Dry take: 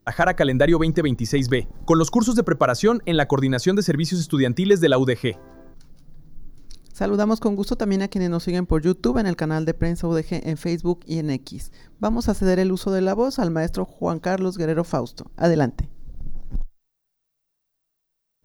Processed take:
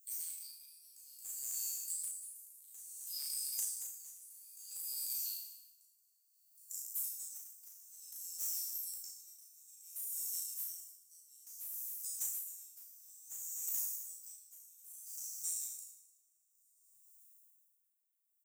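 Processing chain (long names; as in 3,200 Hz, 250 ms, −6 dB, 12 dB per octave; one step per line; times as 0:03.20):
peak hold with a decay on every bin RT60 0.99 s
inverse Chebyshev high-pass filter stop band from 1,200 Hz, stop band 80 dB
downward compressor 16 to 1, threshold −41 dBFS, peak gain reduction 14.5 dB
formants moved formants +5 semitones
soft clipping −37.5 dBFS, distortion −18 dB
double-tracking delay 35 ms −4 dB
repeating echo 265 ms, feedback 55%, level −11.5 dB
tremolo with a sine in dB 0.58 Hz, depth 20 dB
level +9.5 dB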